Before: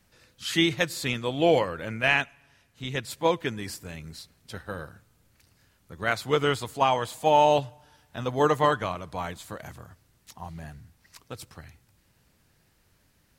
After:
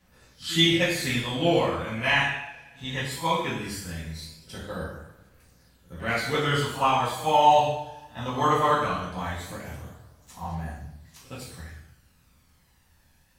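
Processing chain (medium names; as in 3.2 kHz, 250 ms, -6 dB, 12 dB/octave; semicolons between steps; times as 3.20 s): pre-echo 67 ms -19 dB; two-slope reverb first 0.78 s, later 2.9 s, from -28 dB, DRR -7.5 dB; phaser 0.19 Hz, delay 1.2 ms, feedback 39%; trim -6.5 dB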